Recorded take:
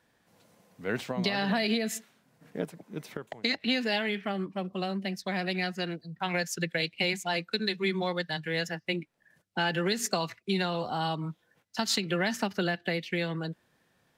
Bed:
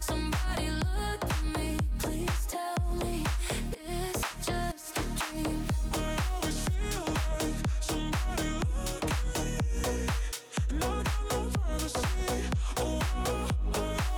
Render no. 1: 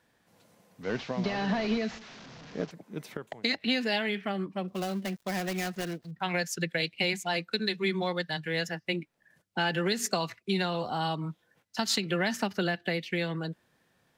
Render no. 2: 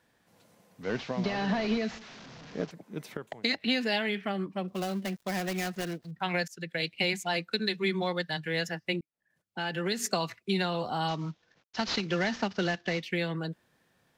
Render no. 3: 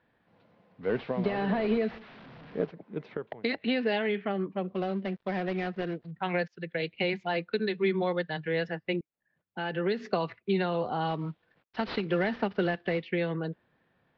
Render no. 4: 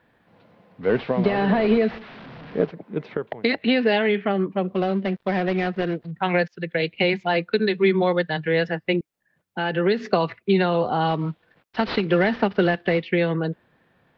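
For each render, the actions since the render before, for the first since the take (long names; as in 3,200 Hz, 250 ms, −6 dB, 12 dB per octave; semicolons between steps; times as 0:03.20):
0:00.83–0:02.71: linear delta modulator 32 kbit/s, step −42 dBFS; 0:04.68–0:06.11: gap after every zero crossing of 0.13 ms
0:06.48–0:06.89: fade in, from −20.5 dB; 0:09.01–0:10.16: fade in; 0:11.08–0:13.03: variable-slope delta modulation 32 kbit/s
Bessel low-pass filter 2,400 Hz, order 8; dynamic equaliser 440 Hz, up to +6 dB, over −47 dBFS, Q 2.2
level +8.5 dB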